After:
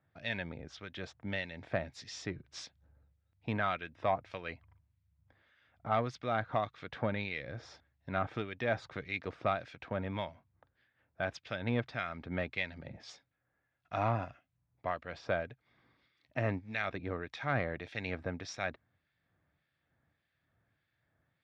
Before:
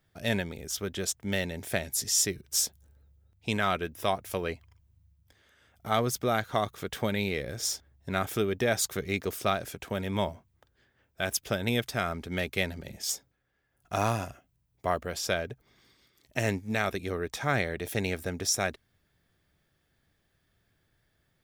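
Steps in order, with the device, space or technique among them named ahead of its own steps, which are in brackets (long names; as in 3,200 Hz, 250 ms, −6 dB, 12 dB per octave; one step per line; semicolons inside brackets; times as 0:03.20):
guitar amplifier with harmonic tremolo (two-band tremolo in antiphase 1.7 Hz, depth 70%, crossover 1,700 Hz; soft clipping −18 dBFS, distortion −20 dB; loudspeaker in its box 89–3,600 Hz, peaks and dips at 200 Hz −5 dB, 400 Hz −9 dB, 3,100 Hz −6 dB)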